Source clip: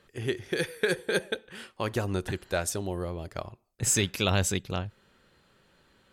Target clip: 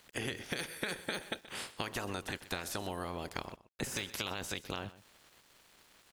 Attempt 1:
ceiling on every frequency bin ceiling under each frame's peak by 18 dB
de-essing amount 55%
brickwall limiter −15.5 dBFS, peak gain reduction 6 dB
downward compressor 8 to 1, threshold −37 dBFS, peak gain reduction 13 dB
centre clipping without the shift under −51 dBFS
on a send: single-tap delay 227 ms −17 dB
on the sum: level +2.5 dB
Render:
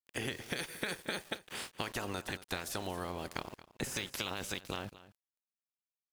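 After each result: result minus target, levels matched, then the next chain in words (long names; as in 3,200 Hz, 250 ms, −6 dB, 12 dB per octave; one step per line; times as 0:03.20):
echo 100 ms late; centre clipping without the shift: distortion +10 dB
ceiling on every frequency bin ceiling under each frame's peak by 18 dB
de-essing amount 55%
brickwall limiter −15.5 dBFS, peak gain reduction 6 dB
downward compressor 8 to 1, threshold −37 dBFS, peak gain reduction 13 dB
centre clipping without the shift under −51 dBFS
on a send: single-tap delay 127 ms −17 dB
on the sum: level +2.5 dB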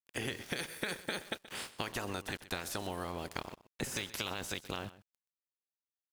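centre clipping without the shift: distortion +10 dB
ceiling on every frequency bin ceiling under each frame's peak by 18 dB
de-essing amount 55%
brickwall limiter −15.5 dBFS, peak gain reduction 6 dB
downward compressor 8 to 1, threshold −37 dBFS, peak gain reduction 13 dB
centre clipping without the shift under −60.5 dBFS
on a send: single-tap delay 127 ms −17 dB
on the sum: level +2.5 dB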